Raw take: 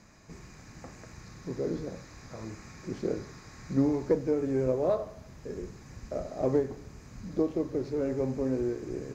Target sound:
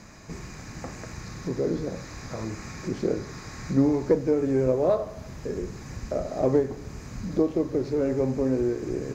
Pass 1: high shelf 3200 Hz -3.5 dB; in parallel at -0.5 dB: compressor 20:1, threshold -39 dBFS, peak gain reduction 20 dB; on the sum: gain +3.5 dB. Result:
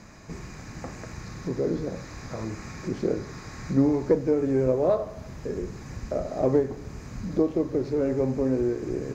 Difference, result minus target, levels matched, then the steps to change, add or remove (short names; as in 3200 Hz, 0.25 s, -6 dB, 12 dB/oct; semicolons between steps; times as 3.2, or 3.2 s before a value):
8000 Hz band -3.0 dB
remove: high shelf 3200 Hz -3.5 dB